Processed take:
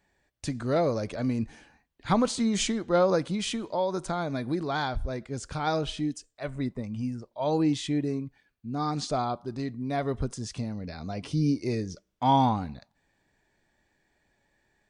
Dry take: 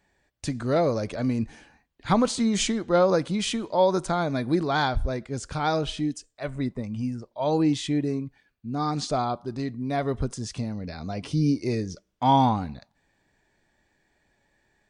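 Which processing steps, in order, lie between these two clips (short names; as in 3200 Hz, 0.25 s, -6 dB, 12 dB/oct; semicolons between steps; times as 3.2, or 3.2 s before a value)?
3.34–5.67 compressor 2:1, threshold -25 dBFS, peak gain reduction 5.5 dB; gain -2.5 dB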